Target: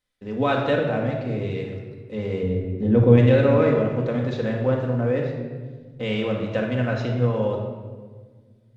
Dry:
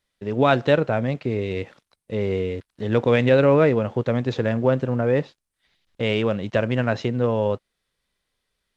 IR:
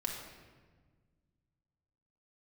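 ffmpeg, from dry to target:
-filter_complex "[0:a]asettb=1/sr,asplit=3[a][b][c];[a]atrim=end=2.434[d];[b]atrim=start=2.43:end=3.18,asetpts=PTS-STARTPTS,afade=t=in:d=0.004:c=qsin,afade=t=out:st=0.746:d=0.004:c=qsin,tiltshelf=f=780:g=10[e];[c]atrim=start=3.176[f];[d][e]acrossfade=d=0.004:c1=hsin:c2=qsin[g];[g][f]acrossfade=d=0.004:c1=qsin:c2=hsin[h];[1:a]atrim=start_sample=2205[i];[h][i]afir=irnorm=-1:irlink=0,volume=-5dB"

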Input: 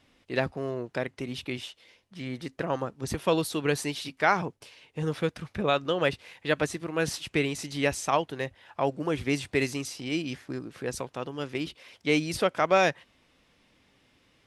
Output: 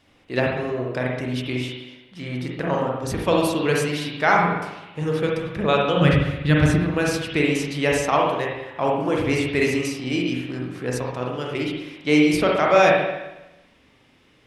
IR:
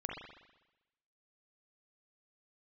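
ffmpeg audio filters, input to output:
-filter_complex "[0:a]asplit=3[a][b][c];[a]afade=t=out:st=5.96:d=0.02[d];[b]asubboost=boost=11:cutoff=160,afade=t=in:st=5.96:d=0.02,afade=t=out:st=6.78:d=0.02[e];[c]afade=t=in:st=6.78:d=0.02[f];[d][e][f]amix=inputs=3:normalize=0[g];[1:a]atrim=start_sample=2205[h];[g][h]afir=irnorm=-1:irlink=0,volume=6dB"

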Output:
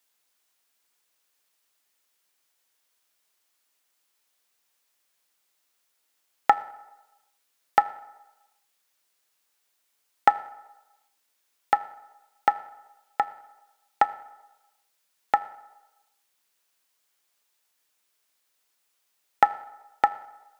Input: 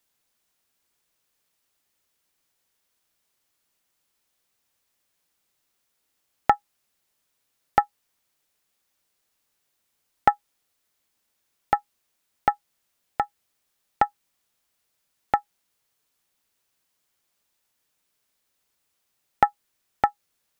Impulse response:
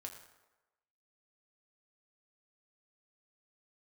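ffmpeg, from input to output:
-filter_complex "[0:a]highpass=f=580:p=1,asplit=2[a][b];[1:a]atrim=start_sample=2205[c];[b][c]afir=irnorm=-1:irlink=0,volume=-2.5dB[d];[a][d]amix=inputs=2:normalize=0,volume=-1dB"

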